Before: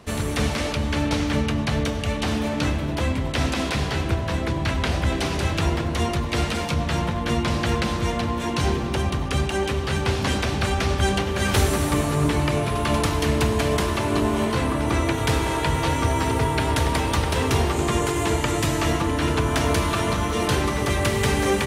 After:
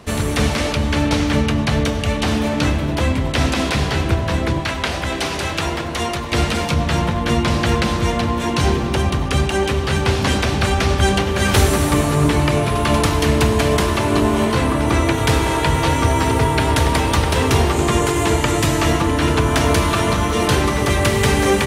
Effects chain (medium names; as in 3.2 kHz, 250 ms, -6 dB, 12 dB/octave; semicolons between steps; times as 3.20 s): 4.60–6.32 s: bass shelf 300 Hz -10 dB; trim +5.5 dB